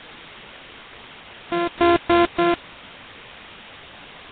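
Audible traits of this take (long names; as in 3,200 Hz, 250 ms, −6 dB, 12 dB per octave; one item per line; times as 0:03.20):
a buzz of ramps at a fixed pitch in blocks of 128 samples
sample-and-hold tremolo
a quantiser's noise floor 6 bits, dither triangular
Nellymoser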